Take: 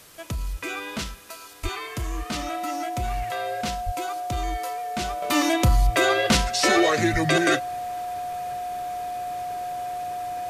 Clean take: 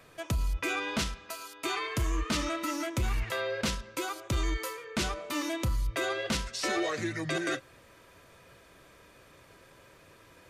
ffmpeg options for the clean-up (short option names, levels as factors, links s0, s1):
-filter_complex "[0:a]bandreject=f=720:w=30,asplit=3[s0][s1][s2];[s0]afade=t=out:st=1.62:d=0.02[s3];[s1]highpass=f=140:w=0.5412,highpass=f=140:w=1.3066,afade=t=in:st=1.62:d=0.02,afade=t=out:st=1.74:d=0.02[s4];[s2]afade=t=in:st=1.74:d=0.02[s5];[s3][s4][s5]amix=inputs=3:normalize=0,asplit=3[s6][s7][s8];[s6]afade=t=out:st=3.85:d=0.02[s9];[s7]highpass=f=140:w=0.5412,highpass=f=140:w=1.3066,afade=t=in:st=3.85:d=0.02,afade=t=out:st=3.97:d=0.02[s10];[s8]afade=t=in:st=3.97:d=0.02[s11];[s9][s10][s11]amix=inputs=3:normalize=0,asplit=3[s12][s13][s14];[s12]afade=t=out:st=7.12:d=0.02[s15];[s13]highpass=f=140:w=0.5412,highpass=f=140:w=1.3066,afade=t=in:st=7.12:d=0.02,afade=t=out:st=7.24:d=0.02[s16];[s14]afade=t=in:st=7.24:d=0.02[s17];[s15][s16][s17]amix=inputs=3:normalize=0,afwtdn=0.0035,asetnsamples=n=441:p=0,asendcmd='5.22 volume volume -11dB',volume=1"